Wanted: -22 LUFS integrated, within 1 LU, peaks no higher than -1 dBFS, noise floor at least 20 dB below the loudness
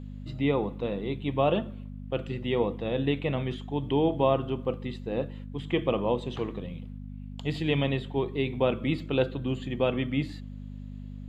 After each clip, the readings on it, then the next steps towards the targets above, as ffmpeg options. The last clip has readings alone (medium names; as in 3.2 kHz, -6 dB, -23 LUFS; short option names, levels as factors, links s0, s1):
hum 50 Hz; highest harmonic 250 Hz; hum level -37 dBFS; loudness -29.5 LUFS; peak level -10.5 dBFS; loudness target -22.0 LUFS
-> -af "bandreject=f=50:t=h:w=4,bandreject=f=100:t=h:w=4,bandreject=f=150:t=h:w=4,bandreject=f=200:t=h:w=4,bandreject=f=250:t=h:w=4"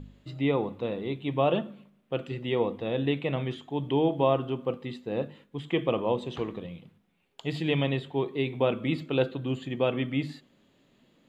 hum not found; loudness -29.5 LUFS; peak level -11.0 dBFS; loudness target -22.0 LUFS
-> -af "volume=2.37"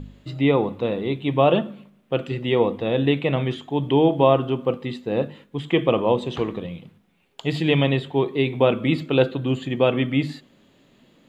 loudness -22.0 LUFS; peak level -3.5 dBFS; noise floor -59 dBFS